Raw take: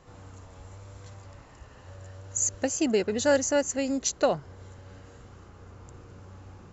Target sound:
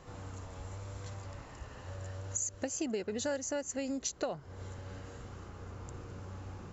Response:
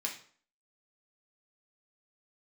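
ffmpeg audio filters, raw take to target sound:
-af "acompressor=threshold=0.0158:ratio=5,volume=1.26"

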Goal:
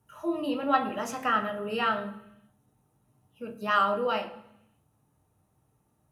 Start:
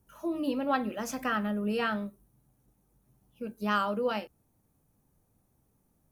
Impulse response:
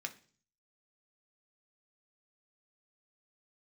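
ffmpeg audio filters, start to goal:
-filter_complex "[1:a]atrim=start_sample=2205,afade=t=out:st=0.38:d=0.01,atrim=end_sample=17199,asetrate=22932,aresample=44100[s0];[0:a][s0]afir=irnorm=-1:irlink=0"

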